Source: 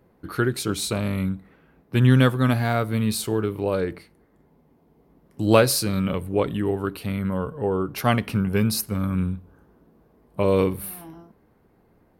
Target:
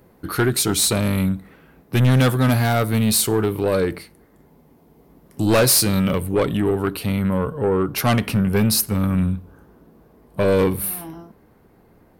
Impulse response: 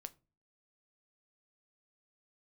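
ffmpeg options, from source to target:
-af "asetnsamples=n=441:p=0,asendcmd='6.46 highshelf g 4',highshelf=f=4800:g=9,asoftclip=type=tanh:threshold=0.126,volume=2.11"

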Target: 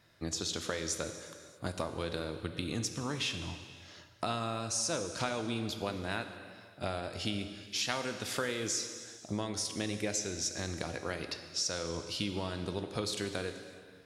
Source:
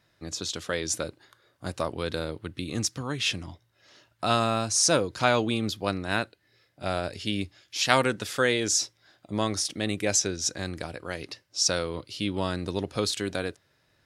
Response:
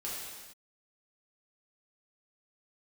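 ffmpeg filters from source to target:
-filter_complex "[0:a]acompressor=threshold=0.02:ratio=6,asplit=2[s0][s1];[1:a]atrim=start_sample=2205,asetrate=32193,aresample=44100[s2];[s1][s2]afir=irnorm=-1:irlink=0,volume=0.335[s3];[s0][s3]amix=inputs=2:normalize=0"

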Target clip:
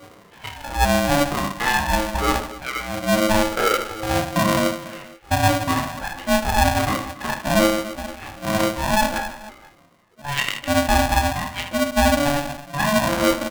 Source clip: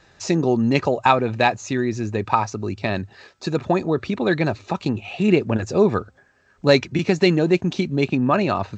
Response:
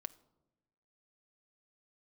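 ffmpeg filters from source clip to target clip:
-filter_complex "[0:a]afftfilt=real='re*pow(10,19/40*sin(2*PI*(0.81*log(max(b,1)*sr/1024/100)/log(2)-(-1.1)*(pts-256)/sr)))':imag='im*pow(10,19/40*sin(2*PI*(0.81*log(max(b,1)*sr/1024/100)/log(2)-(-1.1)*(pts-256)/sr)))':win_size=1024:overlap=0.75,lowpass=f=3300:w=0.5412,lowpass=f=3300:w=1.3066,areverse,acompressor=threshold=0.0501:ratio=5,areverse,acrossover=split=810[s0][s1];[s0]aeval=exprs='val(0)*(1-1/2+1/2*cos(2*PI*1.4*n/s))':c=same[s2];[s1]aeval=exprs='val(0)*(1-1/2-1/2*cos(2*PI*1.4*n/s))':c=same[s3];[s2][s3]amix=inputs=2:normalize=0,flanger=delay=8.4:depth=2.3:regen=-64:speed=0.34:shape=sinusoidal,atempo=0.65,adynamicsmooth=sensitivity=4.5:basefreq=1400,aecho=1:1:30|78|154.8|277.7|474.3:0.631|0.398|0.251|0.158|0.1,alimiter=level_in=13.3:limit=0.891:release=50:level=0:latency=1,aeval=exprs='val(0)*sgn(sin(2*PI*430*n/s))':c=same,volume=0.422"

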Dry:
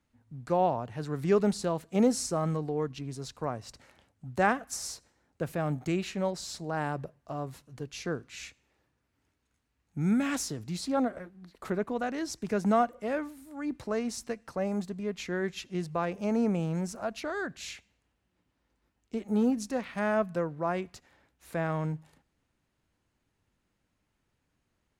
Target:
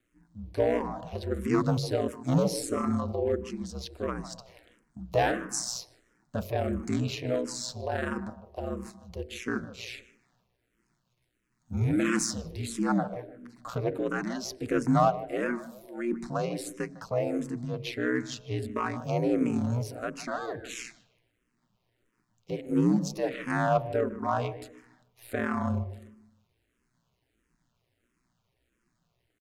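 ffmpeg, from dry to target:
-filter_complex "[0:a]asplit=2[s0][s1];[s1]aeval=exprs='0.0841*(abs(mod(val(0)/0.0841+3,4)-2)-1)':c=same,volume=0.422[s2];[s0][s2]amix=inputs=2:normalize=0,aeval=exprs='val(0)*sin(2*PI*60*n/s)':c=same,atempo=0.85,bandreject=f=830:w=12,bandreject=f=46.53:t=h:w=4,bandreject=f=93.06:t=h:w=4,bandreject=f=139.59:t=h:w=4,bandreject=f=186.12:t=h:w=4,bandreject=f=232.65:t=h:w=4,bandreject=f=279.18:t=h:w=4,bandreject=f=325.71:t=h:w=4,bandreject=f=372.24:t=h:w=4,bandreject=f=418.77:t=h:w=4,bandreject=f=465.3:t=h:w=4,bandreject=f=511.83:t=h:w=4,bandreject=f=558.36:t=h:w=4,bandreject=f=604.89:t=h:w=4,bandreject=f=651.42:t=h:w=4,asplit=2[s3][s4];[s4]adelay=153,lowpass=f=1700:p=1,volume=0.2,asplit=2[s5][s6];[s6]adelay=153,lowpass=f=1700:p=1,volume=0.38,asplit=2[s7][s8];[s8]adelay=153,lowpass=f=1700:p=1,volume=0.38,asplit=2[s9][s10];[s10]adelay=153,lowpass=f=1700:p=1,volume=0.38[s11];[s5][s7][s9][s11]amix=inputs=4:normalize=0[s12];[s3][s12]amix=inputs=2:normalize=0,asplit=2[s13][s14];[s14]afreqshift=-1.5[s15];[s13][s15]amix=inputs=2:normalize=1,volume=1.78"

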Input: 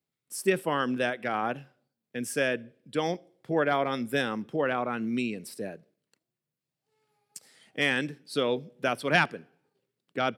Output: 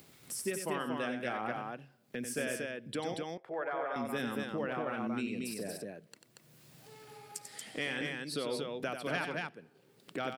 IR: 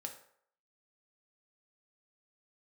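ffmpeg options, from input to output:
-filter_complex "[0:a]acompressor=mode=upward:threshold=0.02:ratio=2.5,asettb=1/sr,asplit=3[s0][s1][s2];[s0]atrim=end=3.144[s3];[s1]atrim=start=3.14:end=3.96,asetpts=PTS-STARTPTS,afade=t=in:d=0.004:c=qsin,afade=t=out:st=0.816:d=0.004:c=qsin,acrossover=split=470 2100:gain=0.0794 1 0.126[s4][s5][s6];[s4][s5][s6]amix=inputs=3:normalize=0[s7];[s2]atrim=start=3.956[s8];[s3][s7]acrossfade=d=0.004:c1=hsin:c2=qsin[s9];[s9][s8]acrossfade=d=0.004:c1=qsin:c2=hsin,acompressor=threshold=0.0178:ratio=2.5,aecho=1:1:93|233:0.422|0.708,volume=0.794"

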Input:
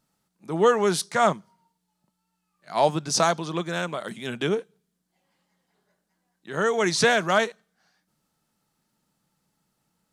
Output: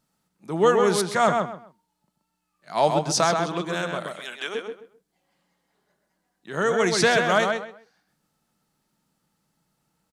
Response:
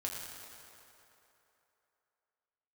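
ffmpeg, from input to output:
-filter_complex "[0:a]asplit=3[s0][s1][s2];[s0]afade=t=out:st=4.06:d=0.02[s3];[s1]highpass=820,afade=t=in:st=4.06:d=0.02,afade=t=out:st=4.54:d=0.02[s4];[s2]afade=t=in:st=4.54:d=0.02[s5];[s3][s4][s5]amix=inputs=3:normalize=0,asplit=2[s6][s7];[s7]adelay=130,lowpass=f=3100:p=1,volume=0.631,asplit=2[s8][s9];[s9]adelay=130,lowpass=f=3100:p=1,volume=0.24,asplit=2[s10][s11];[s11]adelay=130,lowpass=f=3100:p=1,volume=0.24[s12];[s8][s10][s12]amix=inputs=3:normalize=0[s13];[s6][s13]amix=inputs=2:normalize=0"

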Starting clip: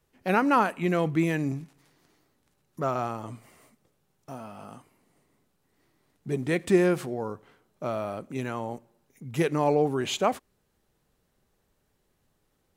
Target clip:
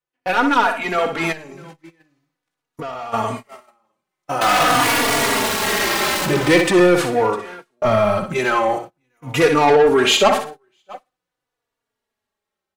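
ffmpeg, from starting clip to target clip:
-filter_complex "[0:a]asettb=1/sr,asplit=3[s0][s1][s2];[s0]atrim=end=4.414[s3];[s1]atrim=start=4.41:end=6.61,asetpts=PTS-STARTPTS,afade=t=in:d=0.004:c=qsin,afade=t=out:st=2.196:d=0.004:c=qsin,aeval=exprs='val(0)+0.5*0.0335*sgn(val(0))':c=same[s4];[s2]atrim=start=6.606[s5];[s3][s4]acrossfade=d=0.004:c1=hsin:c2=qsin[s6];[s6][s5]acrossfade=d=0.004:c1=qsin:c2=hsin,asplit=2[s7][s8];[s8]highpass=f=720:p=1,volume=6.31,asoftclip=type=tanh:threshold=0.335[s9];[s7][s9]amix=inputs=2:normalize=0,lowpass=f=3600:p=1,volume=0.501,aecho=1:1:62|124|186:0.398|0.107|0.029,asplit=3[s10][s11][s12];[s10]afade=t=out:st=7.84:d=0.02[s13];[s11]asubboost=boost=9.5:cutoff=120,afade=t=in:st=7.84:d=0.02,afade=t=out:st=8.34:d=0.02[s14];[s12]afade=t=in:st=8.34:d=0.02[s15];[s13][s14][s15]amix=inputs=3:normalize=0,aecho=1:1:654:0.0841,agate=range=0.0447:threshold=0.0112:ratio=16:detection=peak,dynaudnorm=f=190:g=13:m=3.35,asoftclip=type=tanh:threshold=0.282,asplit=3[s16][s17][s18];[s16]afade=t=out:st=1.31:d=0.02[s19];[s17]acompressor=threshold=0.0282:ratio=10,afade=t=in:st=1.31:d=0.02,afade=t=out:st=3.12:d=0.02[s20];[s18]afade=t=in:st=3.12:d=0.02[s21];[s19][s20][s21]amix=inputs=3:normalize=0,lowshelf=f=490:g=-3,asplit=2[s22][s23];[s23]adelay=3.5,afreqshift=-0.45[s24];[s22][s24]amix=inputs=2:normalize=1,volume=2.24"

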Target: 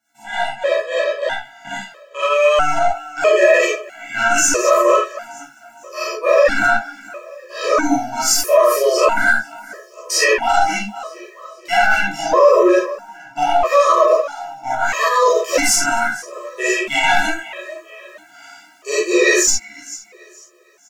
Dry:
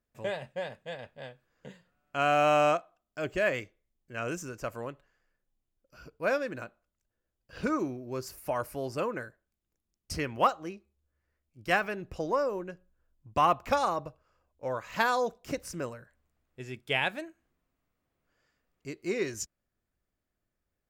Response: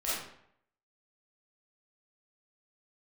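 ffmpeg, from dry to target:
-filter_complex "[0:a]areverse,acompressor=threshold=0.01:ratio=8,areverse,highpass=650,aecho=1:1:464|928|1392:0.075|0.03|0.012,aeval=exprs='(tanh(56.2*val(0)+0.2)-tanh(0.2))/56.2':c=same,equalizer=f=6700:t=o:w=0.71:g=8.5,asplit=2[s0][s1];[s1]adelay=14,volume=0.75[s2];[s0][s2]amix=inputs=2:normalize=0[s3];[1:a]atrim=start_sample=2205,afade=t=out:st=0.18:d=0.01,atrim=end_sample=8379[s4];[s3][s4]afir=irnorm=-1:irlink=0,dynaudnorm=f=350:g=13:m=3.16,highshelf=f=2500:g=-8,alimiter=level_in=17.8:limit=0.891:release=50:level=0:latency=1,afftfilt=real='re*gt(sin(2*PI*0.77*pts/sr)*(1-2*mod(floor(b*sr/1024/330),2)),0)':imag='im*gt(sin(2*PI*0.77*pts/sr)*(1-2*mod(floor(b*sr/1024/330),2)),0)':win_size=1024:overlap=0.75,volume=0.891"

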